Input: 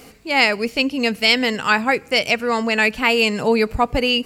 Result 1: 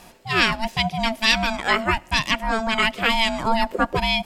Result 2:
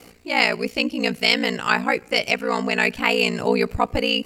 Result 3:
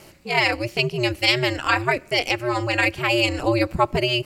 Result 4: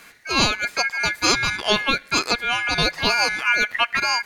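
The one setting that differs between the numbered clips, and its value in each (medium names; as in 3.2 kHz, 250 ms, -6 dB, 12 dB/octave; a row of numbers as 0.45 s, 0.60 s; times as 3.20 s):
ring modulator, frequency: 450 Hz, 29 Hz, 120 Hz, 1.9 kHz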